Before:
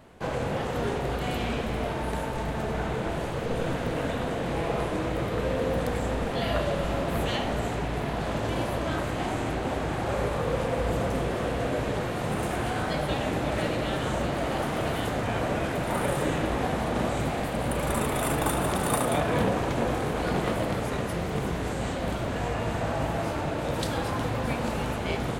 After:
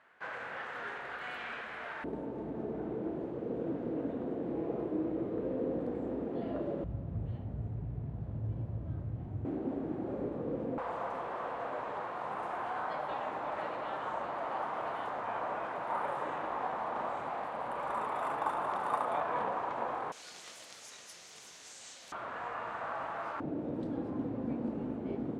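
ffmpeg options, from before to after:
ffmpeg -i in.wav -af "asetnsamples=nb_out_samples=441:pad=0,asendcmd='2.04 bandpass f 320;6.84 bandpass f 100;9.45 bandpass f 290;10.78 bandpass f 1000;20.12 bandpass f 6000;22.12 bandpass f 1200;23.4 bandpass f 280',bandpass=frequency=1600:width_type=q:width=2.5:csg=0" out.wav

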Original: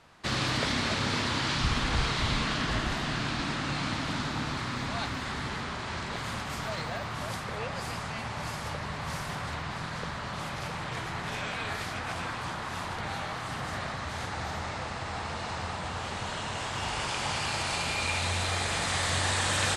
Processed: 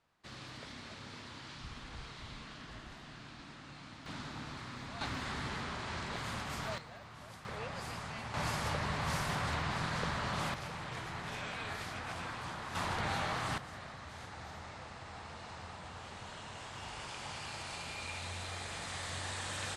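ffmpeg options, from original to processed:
ffmpeg -i in.wav -af "asetnsamples=nb_out_samples=441:pad=0,asendcmd='4.06 volume volume -12dB;5.01 volume volume -5dB;6.78 volume volume -16dB;7.45 volume volume -7dB;8.34 volume volume 0dB;10.54 volume volume -7dB;12.75 volume volume -0.5dB;13.58 volume volume -12.5dB',volume=-19.5dB" out.wav

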